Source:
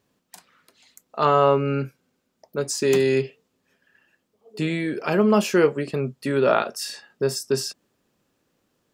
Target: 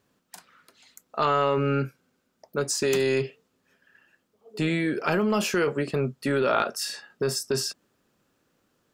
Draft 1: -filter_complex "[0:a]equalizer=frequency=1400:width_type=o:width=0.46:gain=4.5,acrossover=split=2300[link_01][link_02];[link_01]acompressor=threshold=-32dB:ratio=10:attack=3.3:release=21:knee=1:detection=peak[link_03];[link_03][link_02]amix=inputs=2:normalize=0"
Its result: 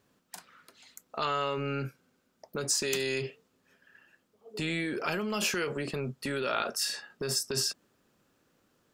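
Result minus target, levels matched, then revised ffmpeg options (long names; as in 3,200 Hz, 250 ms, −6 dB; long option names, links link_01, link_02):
downward compressor: peak gain reduction +9.5 dB
-filter_complex "[0:a]equalizer=frequency=1400:width_type=o:width=0.46:gain=4.5,acrossover=split=2300[link_01][link_02];[link_01]acompressor=threshold=-21.5dB:ratio=10:attack=3.3:release=21:knee=1:detection=peak[link_03];[link_03][link_02]amix=inputs=2:normalize=0"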